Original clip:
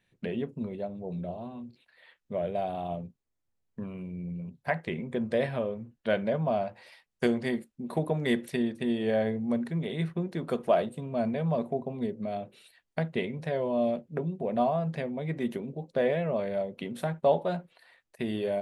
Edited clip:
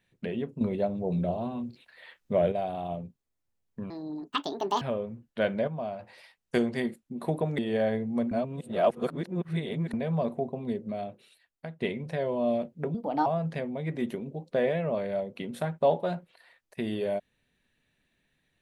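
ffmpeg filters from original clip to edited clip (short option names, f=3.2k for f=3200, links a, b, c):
-filter_complex "[0:a]asplit=13[a][b][c][d][e][f][g][h][i][j][k][l][m];[a]atrim=end=0.612[n];[b]atrim=start=0.608:end=2.522,asetpts=PTS-STARTPTS,volume=7dB[o];[c]atrim=start=2.518:end=3.904[p];[d]atrim=start=3.9:end=5.5,asetpts=PTS-STARTPTS,asetrate=77175,aresample=44100[q];[e]atrim=start=5.496:end=6.362[r];[f]atrim=start=6.358:end=6.682,asetpts=PTS-STARTPTS,volume=-6.5dB[s];[g]atrim=start=6.678:end=8.272[t];[h]atrim=start=8.918:end=9.652[u];[i]atrim=start=9.648:end=11.272,asetpts=PTS-STARTPTS,areverse[v];[j]atrim=start=11.268:end=13.14,asetpts=PTS-STARTPTS,afade=t=out:st=0.952:d=0.92:silence=0.211349[w];[k]atrim=start=13.14:end=14.284,asetpts=PTS-STARTPTS,afade=t=in:d=0.004:c=hsin:silence=0.211349[x];[l]atrim=start=14.28:end=14.68,asetpts=PTS-STARTPTS,asetrate=55566,aresample=44100[y];[m]atrim=start=14.676[z];[n][o]acrossfade=d=0.004:c1=hsin:c2=hsin[aa];[aa][p]acrossfade=d=0.004:c1=hsin:c2=hsin[ab];[ab][q]acrossfade=d=0.004:c1=hsin:c2=hsin[ac];[ac][r]acrossfade=d=0.004:c1=hsin:c2=hsin[ad];[ad][s]acrossfade=d=0.004:c1=hsin:c2=hsin[ae];[ae][t]acrossfade=d=0.004:c1=hsin:c2=hsin[af];[af][u]acrossfade=d=0.004:c1=hsin:c2=hsin[ag];[ag][v]acrossfade=d=0.004:c1=hsin:c2=hsin[ah];[w][x]concat=n=2:v=0:a=1[ai];[ah][ai]acrossfade=d=0.004:c1=hsin:c2=hsin[aj];[aj][y]acrossfade=d=0.004:c1=hsin:c2=hsin[ak];[ak][z]acrossfade=d=0.004:c1=hsin:c2=hsin"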